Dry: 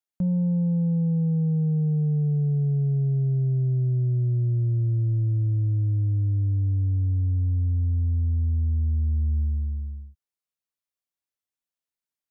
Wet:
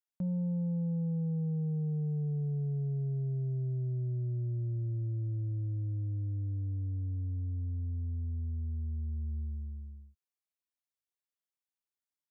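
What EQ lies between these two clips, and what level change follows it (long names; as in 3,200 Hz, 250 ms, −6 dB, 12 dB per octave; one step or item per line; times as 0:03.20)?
low-shelf EQ 130 Hz −8 dB
−6.5 dB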